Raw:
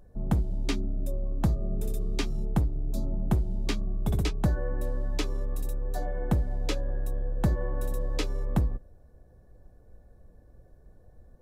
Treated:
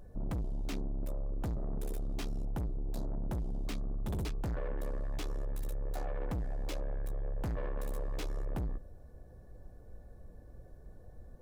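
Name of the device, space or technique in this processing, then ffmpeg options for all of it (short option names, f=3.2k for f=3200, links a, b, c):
saturation between pre-emphasis and de-emphasis: -af "highshelf=f=2k:g=10.5,asoftclip=type=tanh:threshold=-35dB,highshelf=f=2k:g=-10.5,volume=2.5dB"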